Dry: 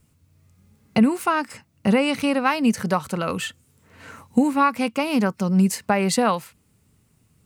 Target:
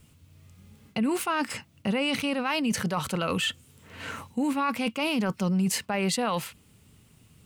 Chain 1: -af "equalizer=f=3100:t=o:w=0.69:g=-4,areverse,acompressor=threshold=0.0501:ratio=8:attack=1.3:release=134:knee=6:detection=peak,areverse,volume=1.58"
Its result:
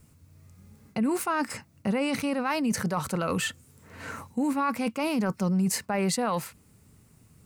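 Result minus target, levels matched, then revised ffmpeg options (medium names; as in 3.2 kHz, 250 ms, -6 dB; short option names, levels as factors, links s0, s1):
4 kHz band -5.5 dB
-af "equalizer=f=3100:t=o:w=0.69:g=7,areverse,acompressor=threshold=0.0501:ratio=8:attack=1.3:release=134:knee=6:detection=peak,areverse,volume=1.58"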